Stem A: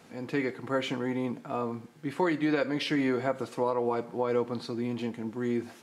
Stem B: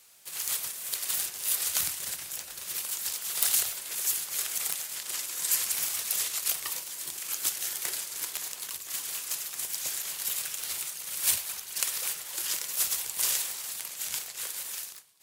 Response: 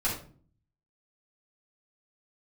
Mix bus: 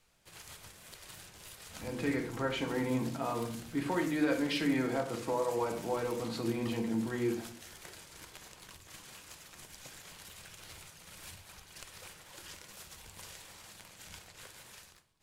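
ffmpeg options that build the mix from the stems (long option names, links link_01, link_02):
-filter_complex "[0:a]alimiter=limit=-21.5dB:level=0:latency=1:release=360,adelay=1700,volume=-3.5dB,asplit=2[link_01][link_02];[link_02]volume=-8.5dB[link_03];[1:a]acompressor=threshold=-31dB:ratio=4,aemphasis=mode=reproduction:type=riaa,volume=-6.5dB,asplit=2[link_04][link_05];[link_05]volume=-19dB[link_06];[2:a]atrim=start_sample=2205[link_07];[link_03][link_06]amix=inputs=2:normalize=0[link_08];[link_08][link_07]afir=irnorm=-1:irlink=0[link_09];[link_01][link_04][link_09]amix=inputs=3:normalize=0,highshelf=frequency=11000:gain=3.5"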